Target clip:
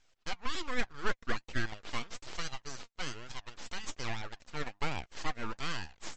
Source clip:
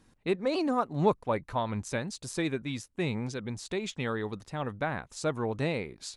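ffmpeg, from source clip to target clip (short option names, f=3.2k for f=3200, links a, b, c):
-af "highpass=f=520:w=0.5412,highpass=f=520:w=1.3066,aresample=16000,aeval=exprs='abs(val(0))':c=same,aresample=44100,flanger=delay=1.2:depth=3.2:regen=54:speed=1.2:shape=sinusoidal,asoftclip=type=tanh:threshold=-20.5dB,volume=5.5dB" -ar 44100 -c:a libmp3lame -b:a 48k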